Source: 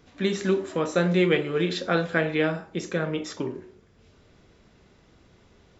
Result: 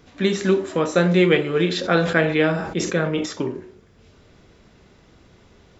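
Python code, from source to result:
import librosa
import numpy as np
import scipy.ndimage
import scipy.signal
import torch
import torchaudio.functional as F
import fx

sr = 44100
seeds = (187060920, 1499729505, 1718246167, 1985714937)

y = fx.sustainer(x, sr, db_per_s=60.0, at=(1.71, 3.26))
y = y * librosa.db_to_amplitude(5.0)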